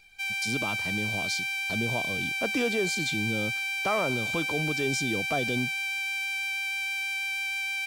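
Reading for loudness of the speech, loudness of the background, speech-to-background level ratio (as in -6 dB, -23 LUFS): -32.5 LUFS, -28.5 LUFS, -4.0 dB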